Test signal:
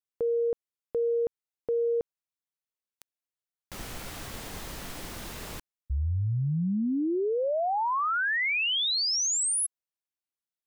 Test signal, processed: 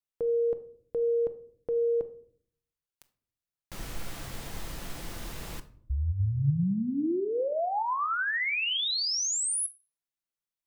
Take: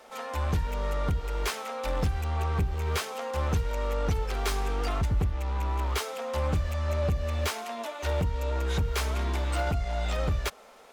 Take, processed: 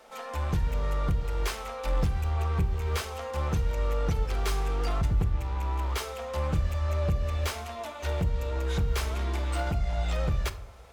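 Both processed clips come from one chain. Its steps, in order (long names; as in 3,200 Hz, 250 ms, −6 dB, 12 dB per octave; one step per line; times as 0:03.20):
low-shelf EQ 87 Hz +6.5 dB
rectangular room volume 760 cubic metres, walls furnished, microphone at 0.74 metres
level −2.5 dB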